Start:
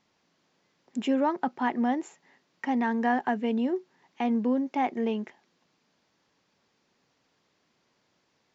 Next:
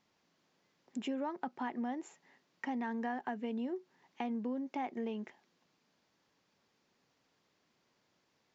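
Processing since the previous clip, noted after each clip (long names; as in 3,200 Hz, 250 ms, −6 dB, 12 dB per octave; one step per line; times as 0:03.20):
downward compressor 3 to 1, threshold −32 dBFS, peak gain reduction 9 dB
level −4.5 dB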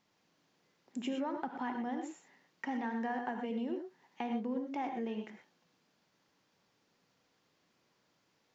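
reverb whose tail is shaped and stops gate 140 ms rising, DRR 4.5 dB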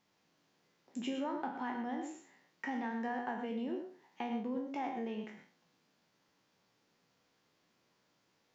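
peak hold with a decay on every bin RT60 0.41 s
level −2 dB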